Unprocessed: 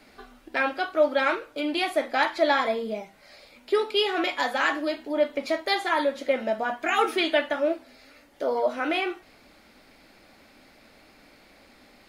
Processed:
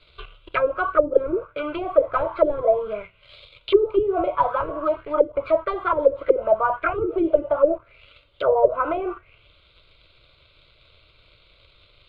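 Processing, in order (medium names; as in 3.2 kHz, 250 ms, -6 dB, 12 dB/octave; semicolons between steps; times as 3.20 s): dynamic bell 510 Hz, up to -4 dB, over -36 dBFS, Q 1.6; waveshaping leveller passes 2; resonant low shelf 170 Hz +10.5 dB, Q 1.5; static phaser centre 1.2 kHz, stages 8; touch-sensitive low-pass 320–3900 Hz down, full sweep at -17 dBFS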